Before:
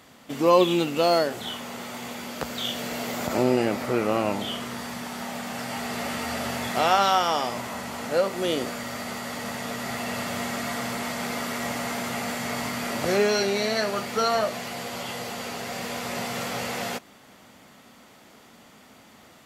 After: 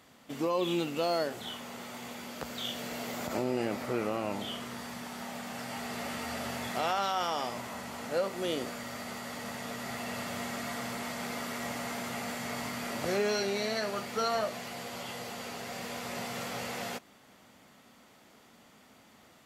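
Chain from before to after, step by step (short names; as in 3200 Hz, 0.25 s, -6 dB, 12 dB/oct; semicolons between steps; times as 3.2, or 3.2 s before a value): limiter -13.5 dBFS, peak gain reduction 7 dB; gain -7 dB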